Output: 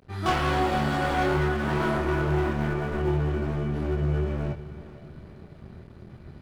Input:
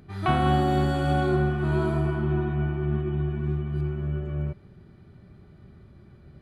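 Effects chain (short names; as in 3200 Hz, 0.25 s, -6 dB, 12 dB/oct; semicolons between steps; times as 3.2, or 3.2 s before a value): dynamic EQ 1300 Hz, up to +5 dB, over -41 dBFS, Q 0.85; in parallel at +3 dB: vocal rider; on the sum: overloaded stage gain 18 dB; chorus 1.1 Hz, depth 2.6 ms; crossover distortion -47 dBFS; on a send: diffused feedback echo 0.469 s, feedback 43%, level -15 dB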